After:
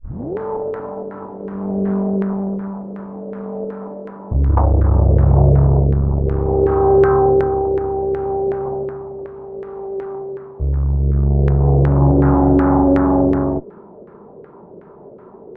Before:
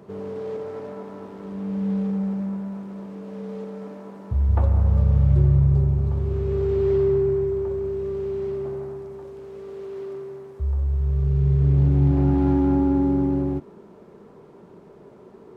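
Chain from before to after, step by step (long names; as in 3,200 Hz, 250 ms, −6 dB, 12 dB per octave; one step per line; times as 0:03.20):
turntable start at the beginning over 0.38 s
harmonic generator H 8 −18 dB, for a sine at −7.5 dBFS
auto-filter low-pass saw down 2.7 Hz 470–1,700 Hz
level +4.5 dB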